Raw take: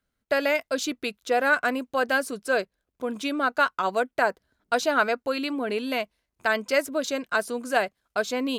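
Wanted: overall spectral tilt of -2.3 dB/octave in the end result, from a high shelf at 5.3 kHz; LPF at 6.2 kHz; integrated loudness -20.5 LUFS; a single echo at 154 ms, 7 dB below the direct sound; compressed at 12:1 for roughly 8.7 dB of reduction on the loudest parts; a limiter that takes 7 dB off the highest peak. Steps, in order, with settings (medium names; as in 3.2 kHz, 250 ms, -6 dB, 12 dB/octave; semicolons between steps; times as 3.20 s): low-pass 6.2 kHz; treble shelf 5.3 kHz +8 dB; compression 12:1, threshold -25 dBFS; peak limiter -20.5 dBFS; delay 154 ms -7 dB; trim +11 dB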